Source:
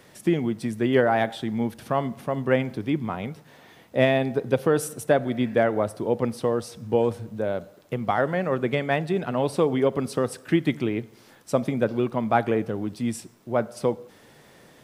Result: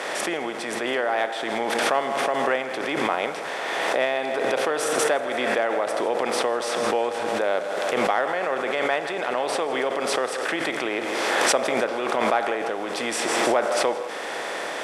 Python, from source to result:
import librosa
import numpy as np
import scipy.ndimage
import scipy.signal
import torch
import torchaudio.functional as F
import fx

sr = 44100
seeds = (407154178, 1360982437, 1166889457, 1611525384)

y = fx.bin_compress(x, sr, power=0.6)
y = fx.rider(y, sr, range_db=10, speed_s=0.5)
y = fx.bandpass_edges(y, sr, low_hz=620.0, high_hz=7300.0)
y = fx.echo_feedback(y, sr, ms=161, feedback_pct=58, wet_db=-14.0)
y = fx.pre_swell(y, sr, db_per_s=21.0)
y = F.gain(torch.from_numpy(y), -1.0).numpy()